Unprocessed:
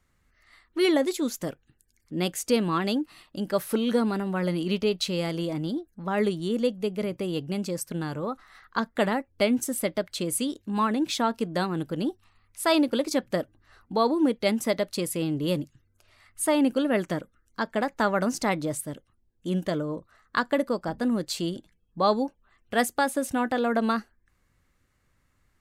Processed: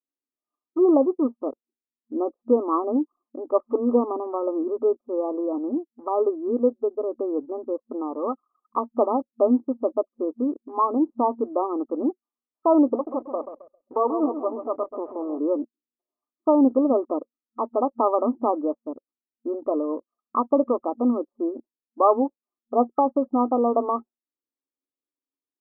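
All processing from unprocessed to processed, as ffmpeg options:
-filter_complex "[0:a]asettb=1/sr,asplit=3[a][b][c];[a]atrim=end=12.954[d];[b]atrim=start=12.95:end=15.39,asetpts=PTS-STARTPTS,afade=t=in:d=0.004:c=qsin,afade=t=out:st=2.436:d=0.004:c=qsin,aeval=exprs='max(val(0),0)':c=same,aecho=1:1:133|266|399|532|665:0.316|0.136|0.0585|0.0251|0.0108,atrim=end_sample=107604[e];[c]atrim=start=15.386[f];[d][e]acrossfade=d=0.004:c1=hsin:c2=qsin[g];[g][f]acrossfade=d=0.004:c1=qsin:c2=hsin,afftfilt=real='re*between(b*sr/4096,230,1300)':imag='im*between(b*sr/4096,230,1300)':win_size=4096:overlap=0.75,anlmdn=0.0631,volume=5dB"

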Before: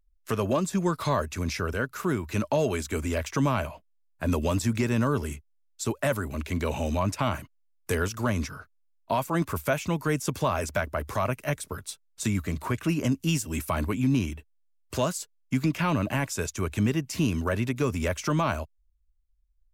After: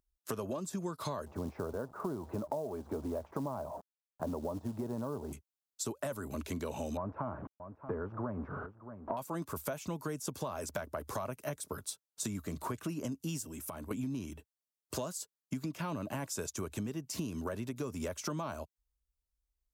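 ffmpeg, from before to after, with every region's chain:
-filter_complex "[0:a]asettb=1/sr,asplit=3[a][b][c];[a]atrim=end=1.264[d];[b]atrim=start=1.26:end=5.33,asetpts=PTS-STARTPTS,afade=t=in:d=0.004:c=qsin,afade=t=out:st=4.066:d=0.004:c=qsin,aeval=exprs='val(0)+0.5*0.01*sgn(val(0))':c=same,lowpass=f=840:t=q:w=1.9,acrusher=bits=6:mode=log:mix=0:aa=0.000001[e];[c]atrim=start=5.326[f];[d][e]acrossfade=d=0.004:c1=hsin:c2=qsin[g];[g][f]acrossfade=d=0.004:c1=qsin:c2=hsin,asettb=1/sr,asplit=3[h][i][j];[h]atrim=end=6.974[k];[i]atrim=start=6.97:end=9.17,asetpts=PTS-STARTPTS,afade=t=in:d=0.004:c=qsin,afade=t=out:st=2.196:d=0.004:c=qsin,aeval=exprs='val(0)+0.5*0.0266*sgn(val(0))':c=same,lowpass=f=1.4k:w=0.5412,lowpass=f=1.4k:w=1.3066,aecho=1:1:629:0.1,atrim=end_sample=97020[l];[j]atrim=start=9.166[m];[k][l]acrossfade=d=0.004:c1=hsin:c2=qsin[n];[n][m]acrossfade=d=0.004:c1=qsin:c2=hsin,asettb=1/sr,asplit=3[o][p][q];[o]atrim=end=13.454[r];[p]atrim=start=13.45:end=13.91,asetpts=PTS-STARTPTS,afade=t=in:d=0.004:c=qsin,afade=t=out:st=0.456:d=0.004:c=qsin,equalizer=f=4.3k:t=o:w=0.31:g=-6.5,acompressor=threshold=-36dB:ratio=12:attack=3.2:release=140:knee=1:detection=peak[s];[q]atrim=start=13.906[t];[r][s]acrossfade=d=0.004:c1=hsin:c2=qsin[u];[u][t]acrossfade=d=0.004:c1=qsin:c2=hsin,highpass=f=190:p=1,equalizer=f=2.2k:w=1.1:g=-9.5,acompressor=threshold=-34dB:ratio=10"

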